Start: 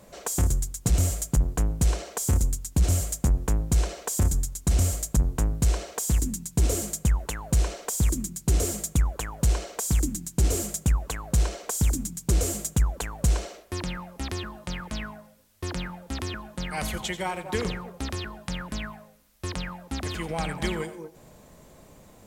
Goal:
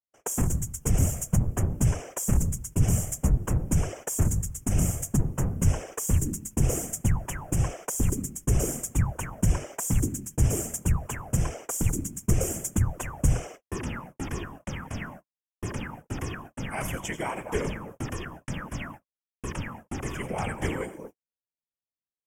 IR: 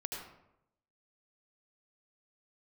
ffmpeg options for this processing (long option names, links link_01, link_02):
-af "afftfilt=real='hypot(re,im)*cos(2*PI*random(0))':imag='hypot(re,im)*sin(2*PI*random(1))':win_size=512:overlap=0.75,asuperstop=centerf=4100:order=4:qfactor=1.6,agate=range=-57dB:threshold=-47dB:ratio=16:detection=peak,volume=5dB"